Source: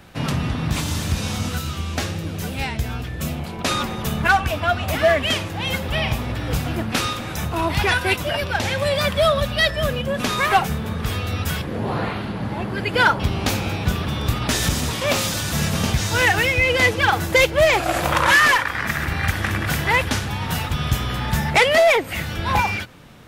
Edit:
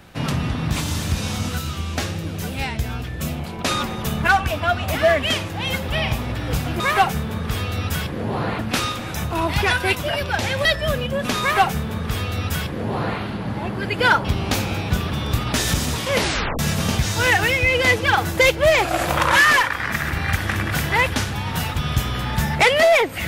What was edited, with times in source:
0:08.86–0:09.60: remove
0:10.35–0:12.14: duplicate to 0:06.80
0:15.05: tape stop 0.49 s

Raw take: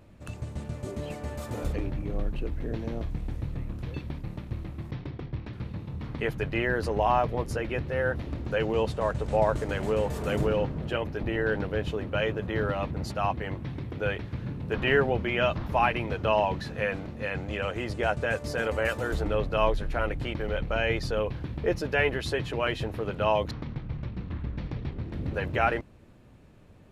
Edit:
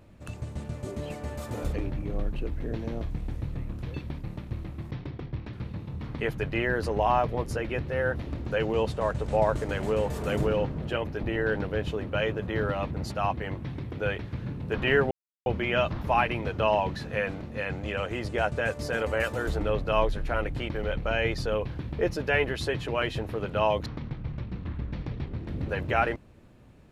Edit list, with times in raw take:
0:15.11: splice in silence 0.35 s

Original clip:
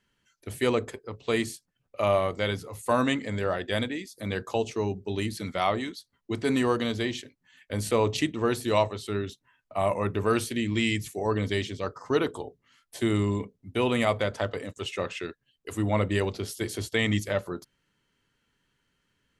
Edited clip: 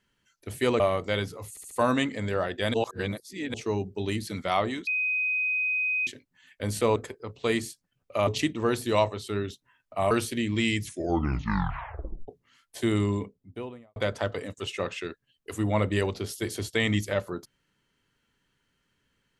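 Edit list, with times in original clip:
0:00.80–0:02.11: move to 0:08.06
0:02.81: stutter 0.07 s, 4 plays
0:03.84–0:04.64: reverse
0:05.97–0:07.17: beep over 2,510 Hz −24 dBFS
0:09.90–0:10.30: remove
0:11.00: tape stop 1.47 s
0:13.23–0:14.15: fade out and dull

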